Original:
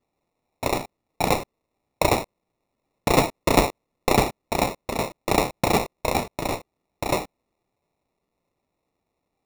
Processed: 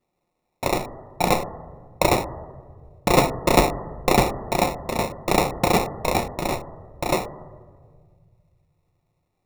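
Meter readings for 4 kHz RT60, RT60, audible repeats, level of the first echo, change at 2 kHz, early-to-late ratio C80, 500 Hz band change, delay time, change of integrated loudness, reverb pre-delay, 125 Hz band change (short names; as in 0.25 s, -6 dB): 1.3 s, 1.7 s, none, none, +1.0 dB, 18.5 dB, +2.0 dB, none, +1.5 dB, 6 ms, +2.0 dB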